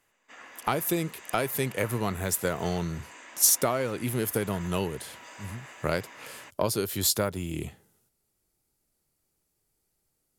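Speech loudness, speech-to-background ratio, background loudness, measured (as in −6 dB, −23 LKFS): −28.0 LKFS, 18.5 dB, −46.5 LKFS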